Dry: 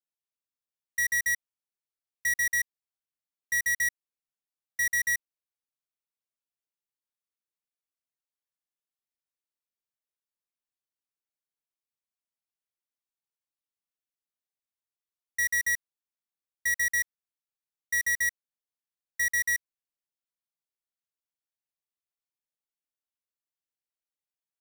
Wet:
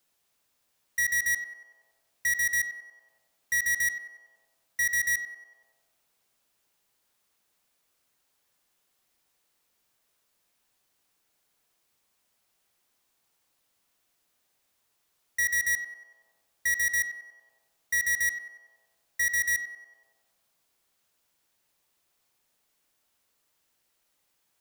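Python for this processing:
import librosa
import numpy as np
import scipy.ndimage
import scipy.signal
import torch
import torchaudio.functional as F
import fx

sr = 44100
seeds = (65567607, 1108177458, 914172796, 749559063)

y = fx.echo_banded(x, sr, ms=94, feedback_pct=59, hz=690.0, wet_db=-7.5)
y = fx.power_curve(y, sr, exponent=0.7)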